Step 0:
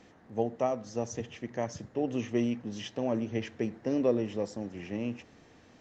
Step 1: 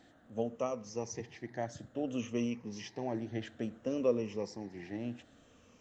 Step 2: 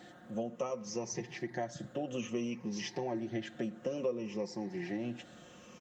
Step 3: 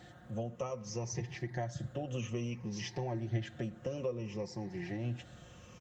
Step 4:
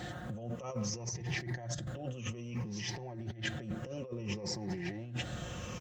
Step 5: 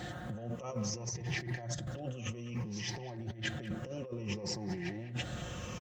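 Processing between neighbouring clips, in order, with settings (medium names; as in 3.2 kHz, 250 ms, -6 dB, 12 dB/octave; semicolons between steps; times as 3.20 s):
drifting ripple filter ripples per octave 0.81, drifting -0.59 Hz, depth 10 dB; treble shelf 5.5 kHz +5 dB; trim -6 dB
high-pass 77 Hz; comb 5.6 ms, depth 72%; compression 3:1, threshold -43 dBFS, peak gain reduction 16 dB; trim +7 dB
resonant low shelf 150 Hz +13 dB, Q 1.5; trim -1.5 dB
compressor with a negative ratio -46 dBFS, ratio -1; trim +6 dB
speakerphone echo 200 ms, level -13 dB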